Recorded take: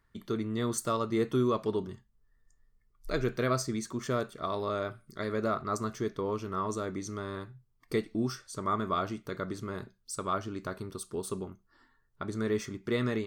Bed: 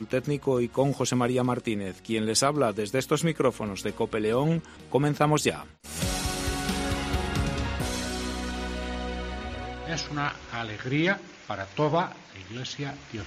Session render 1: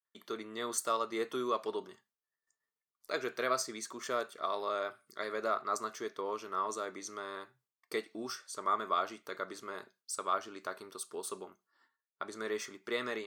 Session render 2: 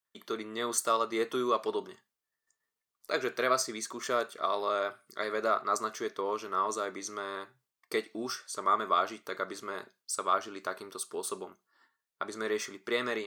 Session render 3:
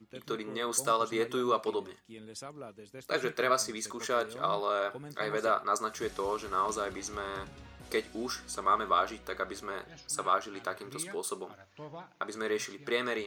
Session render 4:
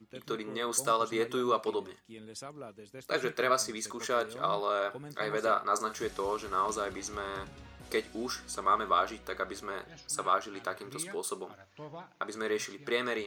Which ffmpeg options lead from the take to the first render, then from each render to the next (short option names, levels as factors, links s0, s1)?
-af "agate=range=0.0224:threshold=0.00141:ratio=3:detection=peak,highpass=540"
-af "volume=1.68"
-filter_complex "[1:a]volume=0.0891[s0];[0:a][s0]amix=inputs=2:normalize=0"
-filter_complex "[0:a]asettb=1/sr,asplit=3[s0][s1][s2];[s0]atrim=end=5.454[s3];[s1]atrim=start=5.45:end=6.02,asetpts=PTS-STARTPTS,afade=t=in:d=0.004:c=qsin,afade=t=out:st=0.566:d=0.004:c=qsin,asplit=2[s4][s5];[s5]adelay=41,volume=0.282[s6];[s4][s6]amix=inputs=2:normalize=0,atrim=end_sample=25137[s7];[s2]atrim=start=6.016[s8];[s3][s7]acrossfade=d=0.004:c1=hsin:c2=qsin[s9];[s9][s8]acrossfade=d=0.004:c1=qsin:c2=hsin"